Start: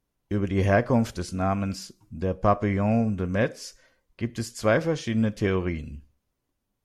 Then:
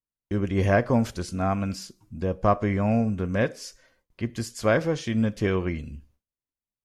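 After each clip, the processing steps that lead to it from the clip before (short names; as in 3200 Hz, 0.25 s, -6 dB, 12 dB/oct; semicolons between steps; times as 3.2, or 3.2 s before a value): gate with hold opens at -56 dBFS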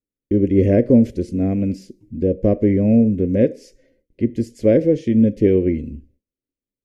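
EQ curve 170 Hz 0 dB, 270 Hz +9 dB, 540 Hz +4 dB, 780 Hz -19 dB, 1300 Hz -28 dB, 2000 Hz -7 dB, 3700 Hz -14 dB; gain +5 dB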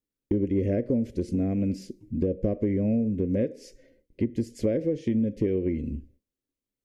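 compressor 6:1, threshold -23 dBFS, peak gain reduction 14 dB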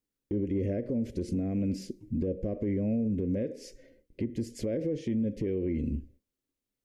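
limiter -24.5 dBFS, peak gain reduction 11 dB; gain +1 dB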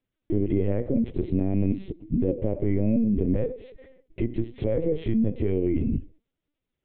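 LPC vocoder at 8 kHz pitch kept; gain +6.5 dB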